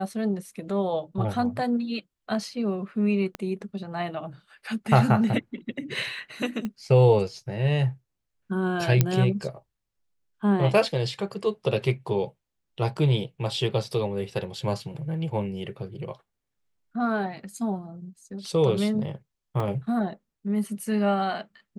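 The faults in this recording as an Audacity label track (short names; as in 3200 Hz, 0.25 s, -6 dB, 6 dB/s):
3.350000	3.350000	pop -18 dBFS
6.650000	6.650000	pop -19 dBFS
9.010000	9.010000	pop -6 dBFS
19.600000	19.600000	gap 2.4 ms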